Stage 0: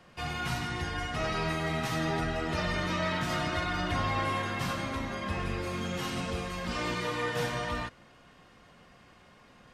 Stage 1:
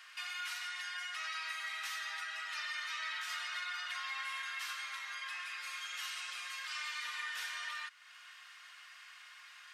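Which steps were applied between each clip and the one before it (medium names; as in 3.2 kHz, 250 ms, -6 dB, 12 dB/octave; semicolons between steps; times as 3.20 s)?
high-pass 1.4 kHz 24 dB/octave; compression 2:1, threshold -56 dBFS, peak gain reduction 12.5 dB; trim +8 dB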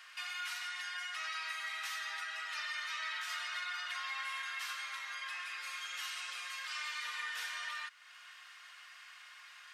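bass shelf 390 Hz +8.5 dB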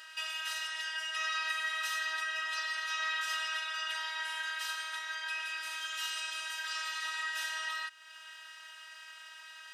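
robot voice 318 Hz; comb of notches 1.1 kHz; trim +8 dB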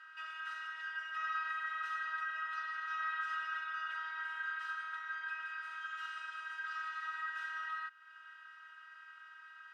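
band-pass filter 1.4 kHz, Q 6.6; trim +5.5 dB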